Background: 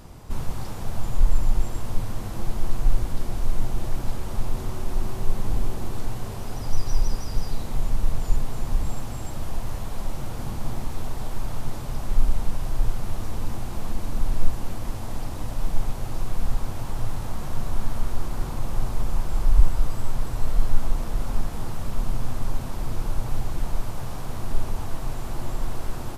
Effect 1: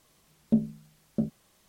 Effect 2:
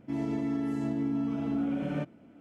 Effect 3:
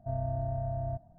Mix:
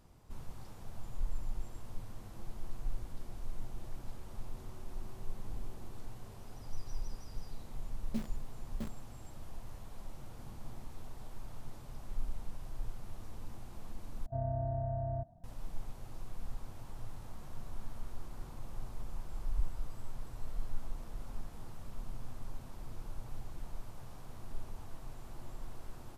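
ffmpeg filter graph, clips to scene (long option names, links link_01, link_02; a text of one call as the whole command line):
ffmpeg -i bed.wav -i cue0.wav -i cue1.wav -i cue2.wav -filter_complex "[0:a]volume=-17.5dB[link_01];[1:a]acrusher=bits=6:dc=4:mix=0:aa=0.000001[link_02];[link_01]asplit=2[link_03][link_04];[link_03]atrim=end=14.264[link_05];[3:a]atrim=end=1.18,asetpts=PTS-STARTPTS,volume=-2.5dB[link_06];[link_04]atrim=start=15.436[link_07];[link_02]atrim=end=1.68,asetpts=PTS-STARTPTS,volume=-15dB,afade=type=in:duration=0.004:curve=hsin,afade=type=out:start_time=1.676:duration=0.004:curve=hsin,adelay=336042S[link_08];[link_05][link_06]acrossfade=duration=0.004:curve1=hsin:curve2=hsin[link_09];[link_09][link_07]acrossfade=duration=0.004:curve1=hsin:curve2=hsin[link_10];[link_10][link_08]amix=inputs=2:normalize=0" out.wav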